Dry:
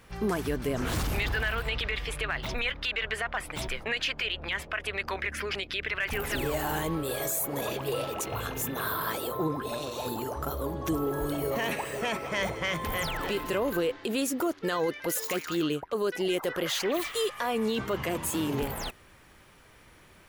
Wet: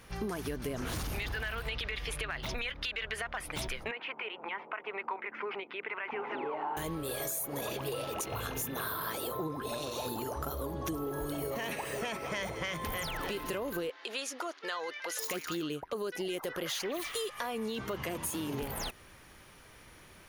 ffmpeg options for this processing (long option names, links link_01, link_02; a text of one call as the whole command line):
ffmpeg -i in.wav -filter_complex "[0:a]asettb=1/sr,asplit=3[link_01][link_02][link_03];[link_01]atrim=end=3.914[link_04];[link_02]atrim=start=3.91:end=6.77,asetpts=PTS-STARTPTS,afade=type=in:duration=0.004:curve=qsin,afade=type=out:start_time=2.856:duration=0.004:curve=qsin,highpass=frequency=250:width=0.5412,highpass=frequency=250:width=1.3066,equalizer=frequency=290:width_type=q:width=4:gain=-6,equalizer=frequency=590:width_type=q:width=4:gain=-6,equalizer=frequency=910:width_type=q:width=4:gain=9,equalizer=frequency=1700:width_type=q:width=4:gain=-10,lowpass=frequency=2100:width=0.5412,lowpass=frequency=2100:width=1.3066[link_05];[link_03]atrim=start=6.766[link_06];[link_04][link_05]acrossfade=duration=0.004:curve1=hsin:curve2=qsin[link_07];[link_07][link_06]acrossfade=duration=0.004:curve1=qsin:curve2=hsin,asettb=1/sr,asplit=3[link_08][link_09][link_10];[link_08]atrim=end=13.904[link_11];[link_09]atrim=start=13.9:end=15.19,asetpts=PTS-STARTPTS,afade=type=in:duration=0.004:curve=qsin,afade=type=out:start_time=1.286:duration=0.004:curve=qsin,highpass=740,lowpass=5800[link_12];[link_10]atrim=start=15.186[link_13];[link_11][link_12]acrossfade=duration=0.004:curve1=hsin:curve2=qsin[link_14];[link_14][link_13]acrossfade=duration=0.004:curve1=qsin:curve2=hsin,equalizer=frequency=8400:width_type=o:width=1.6:gain=5,bandreject=frequency=7700:width=5.3,acompressor=threshold=-33dB:ratio=6" out.wav